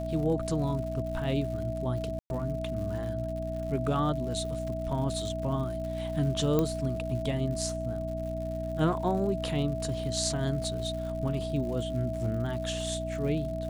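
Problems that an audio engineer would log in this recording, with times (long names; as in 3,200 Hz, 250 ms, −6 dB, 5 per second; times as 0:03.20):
surface crackle 150 per second −39 dBFS
mains hum 60 Hz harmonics 5 −36 dBFS
whistle 650 Hz −34 dBFS
0:02.19–0:02.30: drop-out 111 ms
0:06.59: click −14 dBFS
0:10.64: drop-out 2.7 ms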